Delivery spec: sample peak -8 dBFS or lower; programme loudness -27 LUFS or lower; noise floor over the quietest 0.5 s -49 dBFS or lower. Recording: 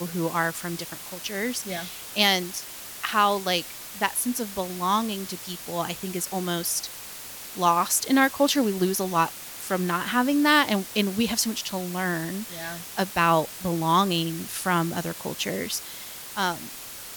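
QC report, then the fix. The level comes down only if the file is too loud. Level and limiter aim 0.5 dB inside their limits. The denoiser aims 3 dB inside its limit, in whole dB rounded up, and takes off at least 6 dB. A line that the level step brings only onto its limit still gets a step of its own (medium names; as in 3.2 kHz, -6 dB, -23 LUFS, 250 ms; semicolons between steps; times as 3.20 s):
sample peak -6.5 dBFS: fail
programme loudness -25.5 LUFS: fail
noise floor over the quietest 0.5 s -40 dBFS: fail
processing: noise reduction 10 dB, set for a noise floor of -40 dBFS; trim -2 dB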